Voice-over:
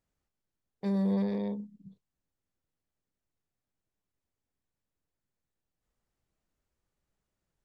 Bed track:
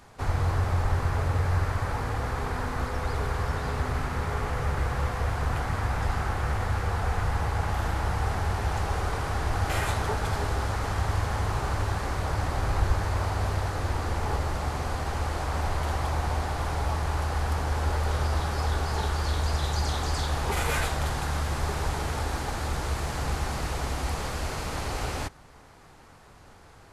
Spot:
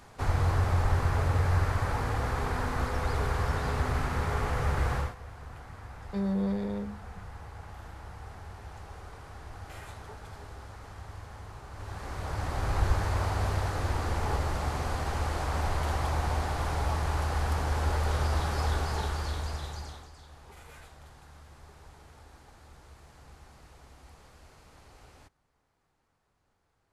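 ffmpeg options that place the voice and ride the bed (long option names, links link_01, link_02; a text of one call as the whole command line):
ffmpeg -i stem1.wav -i stem2.wav -filter_complex "[0:a]adelay=5300,volume=-1dB[link_01];[1:a]volume=15dB,afade=type=out:start_time=4.95:duration=0.2:silence=0.149624,afade=type=in:start_time=11.71:duration=1.17:silence=0.16788,afade=type=out:start_time=18.7:duration=1.4:silence=0.0794328[link_02];[link_01][link_02]amix=inputs=2:normalize=0" out.wav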